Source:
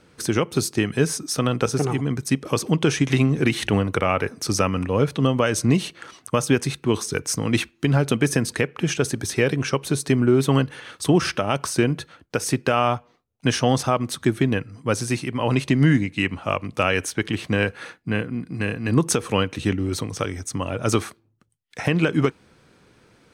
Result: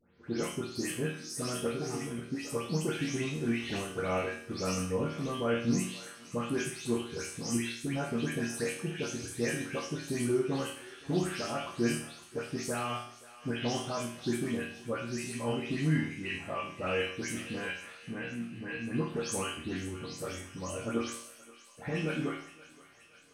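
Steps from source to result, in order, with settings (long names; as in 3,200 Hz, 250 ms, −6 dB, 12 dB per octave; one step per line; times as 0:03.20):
every frequency bin delayed by itself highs late, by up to 230 ms
resonators tuned to a chord D#2 minor, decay 0.55 s
on a send: feedback echo with a high-pass in the loop 525 ms, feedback 75%, high-pass 850 Hz, level −16 dB
on the sum: level +3.5 dB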